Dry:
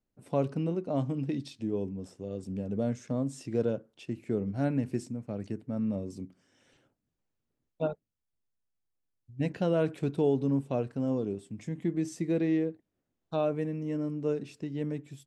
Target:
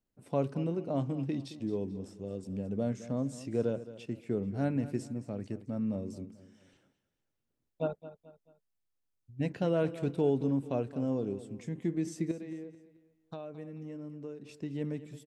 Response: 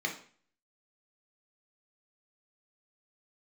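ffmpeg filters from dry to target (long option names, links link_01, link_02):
-filter_complex "[0:a]asettb=1/sr,asplit=3[link_01][link_02][link_03];[link_01]atrim=end=12.314[link_04];[link_02]atrim=start=12.31:end=14.49,asetpts=PTS-STARTPTS,afade=type=in:duration=0.004:curve=qsin,afade=type=out:start_time=2.176:duration=0.004:curve=qsin,acompressor=threshold=-39dB:ratio=5[link_05];[link_03]atrim=start=14.486[link_06];[link_04][link_05]acrossfade=duration=0.004:curve1=hsin:curve2=qsin[link_07];[link_07][link_06]acrossfade=duration=0.004:curve1=qsin:curve2=hsin,aecho=1:1:218|436|654:0.178|0.0676|0.0257,volume=-2dB"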